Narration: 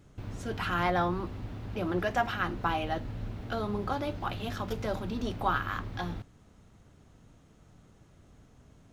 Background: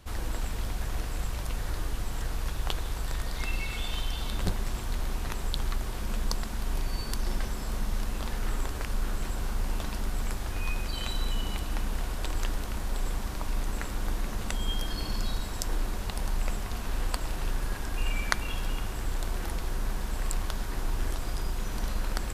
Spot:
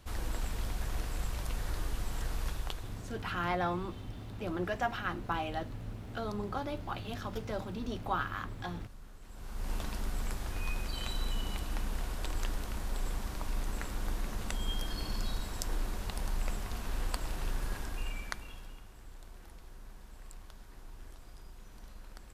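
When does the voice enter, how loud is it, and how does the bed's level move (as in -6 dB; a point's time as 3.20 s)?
2.65 s, -4.5 dB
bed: 2.50 s -3.5 dB
3.33 s -21.5 dB
9.20 s -21.5 dB
9.72 s -4.5 dB
17.79 s -4.5 dB
18.85 s -19.5 dB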